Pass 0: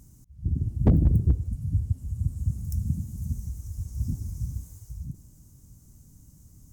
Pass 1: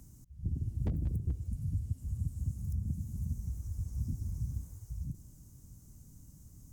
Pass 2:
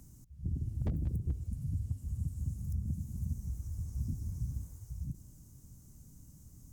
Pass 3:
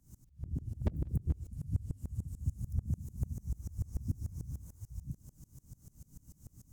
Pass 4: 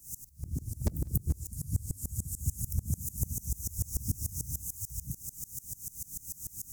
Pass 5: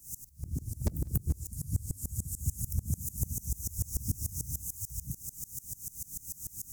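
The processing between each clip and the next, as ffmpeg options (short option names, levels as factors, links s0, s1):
-filter_complex "[0:a]acrossover=split=130|1900[s0][s1][s2];[s0]acompressor=threshold=0.0282:ratio=4[s3];[s1]acompressor=threshold=0.01:ratio=4[s4];[s2]acompressor=threshold=0.00126:ratio=4[s5];[s3][s4][s5]amix=inputs=3:normalize=0,volume=0.794"
-af "bandreject=f=50:t=h:w=6,bandreject=f=100:t=h:w=6,volume=16.8,asoftclip=hard,volume=0.0596"
-af "aeval=exprs='val(0)*pow(10,-25*if(lt(mod(-6.8*n/s,1),2*abs(-6.8)/1000),1-mod(-6.8*n/s,1)/(2*abs(-6.8)/1000),(mod(-6.8*n/s,1)-2*abs(-6.8)/1000)/(1-2*abs(-6.8)/1000))/20)':c=same,volume=2"
-af "aexciter=amount=4:drive=10:freq=4800,volume=1.26"
-af "asoftclip=type=tanh:threshold=0.237"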